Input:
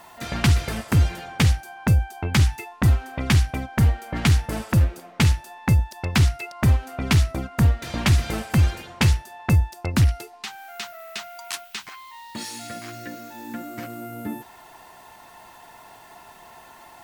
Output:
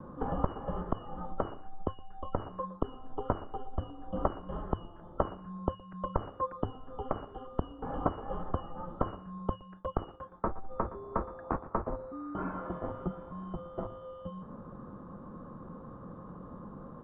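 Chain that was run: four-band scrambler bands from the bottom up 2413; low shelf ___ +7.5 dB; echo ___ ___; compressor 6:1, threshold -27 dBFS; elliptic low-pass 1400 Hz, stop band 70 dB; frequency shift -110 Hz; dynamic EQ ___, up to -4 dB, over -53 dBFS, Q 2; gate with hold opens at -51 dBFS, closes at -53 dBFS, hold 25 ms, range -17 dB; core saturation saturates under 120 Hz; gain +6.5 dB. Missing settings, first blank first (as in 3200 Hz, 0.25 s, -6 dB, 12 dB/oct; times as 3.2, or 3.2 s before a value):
470 Hz, 0.117 s, -17.5 dB, 140 Hz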